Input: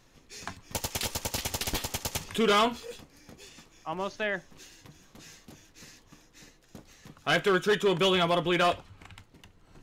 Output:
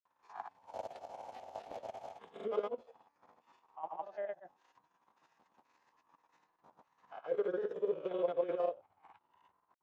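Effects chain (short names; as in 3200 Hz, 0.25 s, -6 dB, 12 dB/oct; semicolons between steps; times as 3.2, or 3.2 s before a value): spectral swells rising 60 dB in 0.40 s; chopper 11 Hz, depth 60%, duty 50%; auto-wah 500–1000 Hz, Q 5.5, down, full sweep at -23 dBFS; grains, pitch spread up and down by 0 st; gain +1 dB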